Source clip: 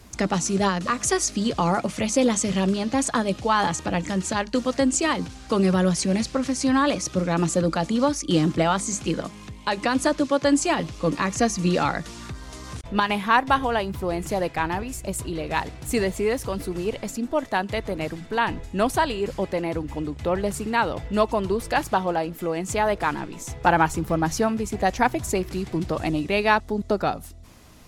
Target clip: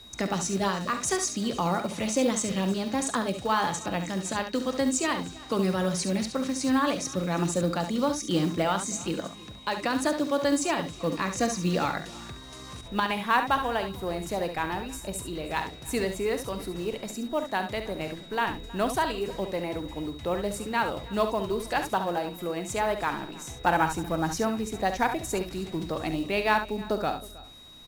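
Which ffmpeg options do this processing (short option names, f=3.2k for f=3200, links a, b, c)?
-filter_complex "[0:a]equalizer=f=75:t=o:w=2.1:g=-4,asplit=2[a][b];[b]aecho=0:1:46|69:0.188|0.355[c];[a][c]amix=inputs=2:normalize=0,acrusher=bits=7:mode=log:mix=0:aa=0.000001,aeval=exprs='val(0)+0.00794*sin(2*PI*3800*n/s)':c=same,asplit=2[d][e];[e]aecho=0:1:317:0.0891[f];[d][f]amix=inputs=2:normalize=0,volume=-5dB"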